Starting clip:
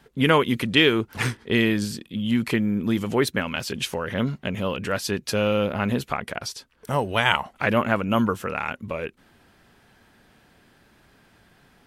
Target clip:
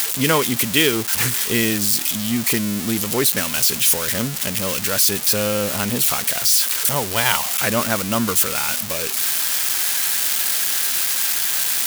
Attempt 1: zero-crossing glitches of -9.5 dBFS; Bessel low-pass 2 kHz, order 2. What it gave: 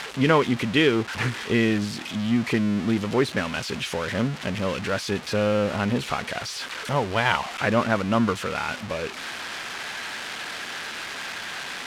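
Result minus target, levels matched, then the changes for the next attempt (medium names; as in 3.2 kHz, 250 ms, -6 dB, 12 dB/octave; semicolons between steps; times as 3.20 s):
2 kHz band +5.0 dB
remove: Bessel low-pass 2 kHz, order 2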